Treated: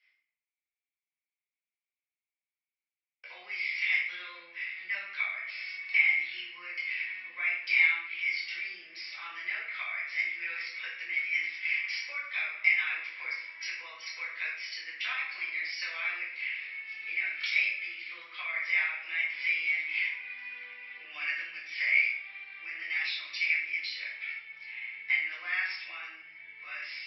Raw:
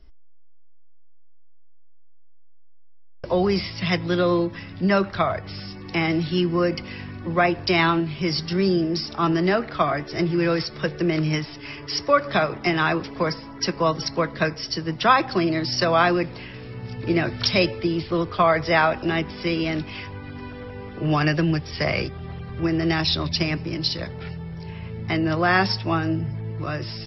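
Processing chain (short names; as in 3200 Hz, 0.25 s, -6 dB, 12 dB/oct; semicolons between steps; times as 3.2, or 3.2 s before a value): compressor 3:1, threshold -29 dBFS, peak gain reduction 13.5 dB; ladder band-pass 2300 Hz, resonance 85%; shoebox room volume 160 m³, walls mixed, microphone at 2 m; gain +2 dB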